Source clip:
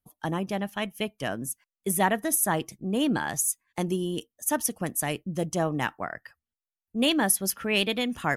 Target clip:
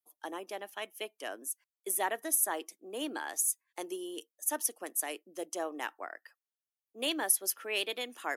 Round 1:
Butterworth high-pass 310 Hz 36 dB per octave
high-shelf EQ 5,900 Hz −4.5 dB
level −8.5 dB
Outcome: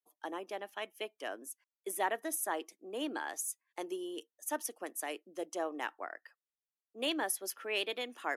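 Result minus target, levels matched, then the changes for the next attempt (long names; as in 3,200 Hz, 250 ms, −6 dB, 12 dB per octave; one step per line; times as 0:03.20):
8,000 Hz band −4.0 dB
change: high-shelf EQ 5,900 Hz +6.5 dB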